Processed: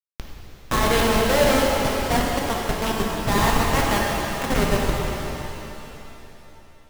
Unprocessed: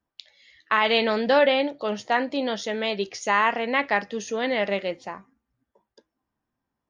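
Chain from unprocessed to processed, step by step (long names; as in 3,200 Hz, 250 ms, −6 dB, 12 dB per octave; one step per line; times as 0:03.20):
gate on every frequency bin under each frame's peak −25 dB strong
comparator with hysteresis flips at −20 dBFS
reverb with rising layers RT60 3.2 s, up +7 semitones, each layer −8 dB, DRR −2.5 dB
level +5 dB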